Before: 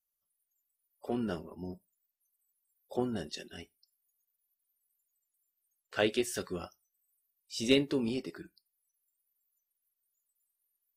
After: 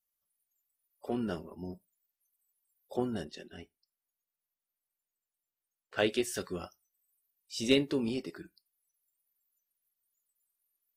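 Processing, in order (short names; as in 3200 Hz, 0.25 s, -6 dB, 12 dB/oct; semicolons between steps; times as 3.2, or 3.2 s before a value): 3.24–5.98 high shelf 3200 Hz -11.5 dB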